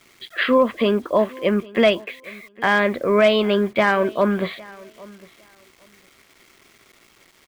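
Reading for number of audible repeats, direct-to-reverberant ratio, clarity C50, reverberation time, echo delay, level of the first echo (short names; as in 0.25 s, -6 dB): 1, none, none, none, 0.807 s, -22.5 dB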